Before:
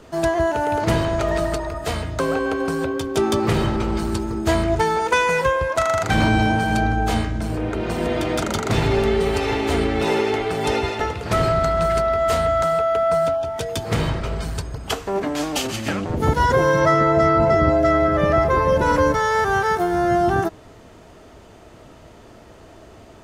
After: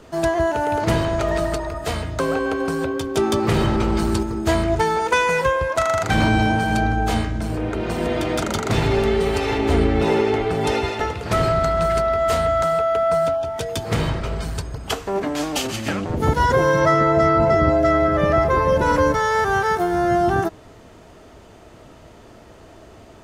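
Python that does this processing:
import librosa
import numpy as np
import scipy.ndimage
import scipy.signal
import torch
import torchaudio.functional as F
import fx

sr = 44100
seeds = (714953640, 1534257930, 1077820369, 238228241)

y = fx.env_flatten(x, sr, amount_pct=50, at=(3.48, 4.23))
y = fx.tilt_eq(y, sr, slope=-1.5, at=(9.58, 10.67))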